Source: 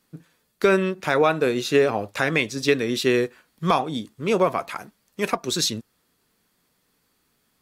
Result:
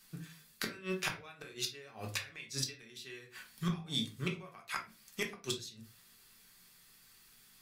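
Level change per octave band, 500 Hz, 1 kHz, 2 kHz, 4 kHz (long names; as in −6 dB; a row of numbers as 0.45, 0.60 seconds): −25.0, −22.0, −15.5, −10.0 decibels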